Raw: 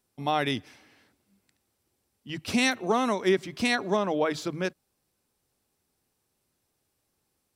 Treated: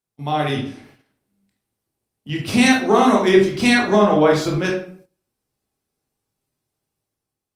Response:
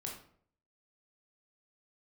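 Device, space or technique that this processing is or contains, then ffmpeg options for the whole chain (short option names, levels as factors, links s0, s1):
speakerphone in a meeting room: -filter_complex "[1:a]atrim=start_sample=2205[s0];[0:a][s0]afir=irnorm=-1:irlink=0,dynaudnorm=f=160:g=9:m=2.11,agate=range=0.224:threshold=0.00282:ratio=16:detection=peak,volume=1.78" -ar 48000 -c:a libopus -b:a 32k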